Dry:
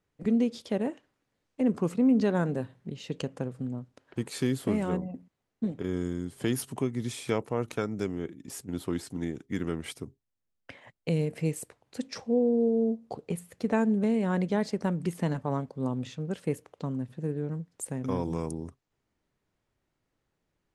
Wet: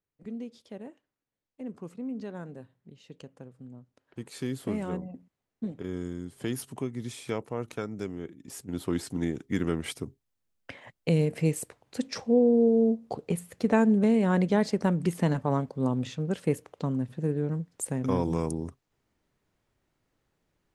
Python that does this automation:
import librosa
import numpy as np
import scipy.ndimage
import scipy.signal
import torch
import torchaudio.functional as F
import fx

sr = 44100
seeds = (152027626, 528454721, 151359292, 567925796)

y = fx.gain(x, sr, db=fx.line((3.54, -13.0), (4.65, -3.5), (8.37, -3.5), (9.05, 3.5)))